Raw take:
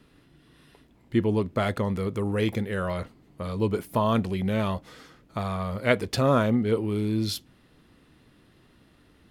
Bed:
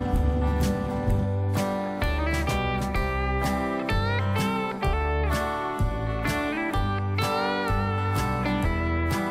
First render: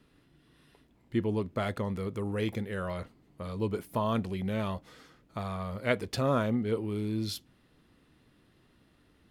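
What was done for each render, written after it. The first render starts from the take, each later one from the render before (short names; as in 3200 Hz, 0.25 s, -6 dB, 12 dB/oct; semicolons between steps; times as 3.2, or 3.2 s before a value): gain -6 dB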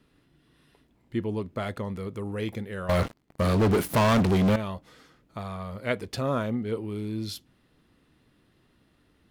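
2.89–4.56 sample leveller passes 5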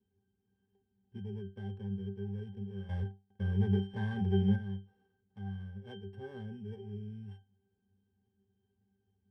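sample sorter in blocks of 16 samples; octave resonator G, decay 0.27 s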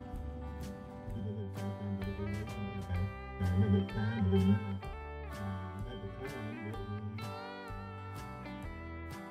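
add bed -19 dB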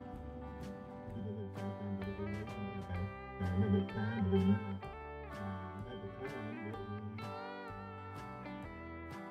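HPF 150 Hz 6 dB/oct; high shelf 4200 Hz -10.5 dB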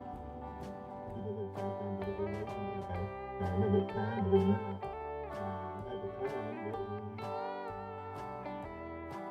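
band shelf 600 Hz +8.5 dB; notch 490 Hz, Q 12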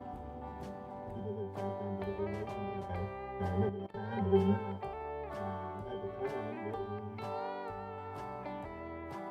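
3.69–4.13 level quantiser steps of 20 dB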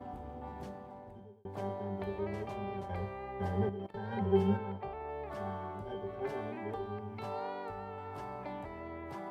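0.64–1.45 fade out; 4.57–5.09 air absorption 140 m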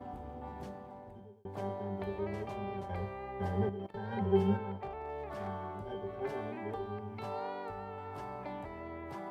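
4.78–5.48 hard clip -34.5 dBFS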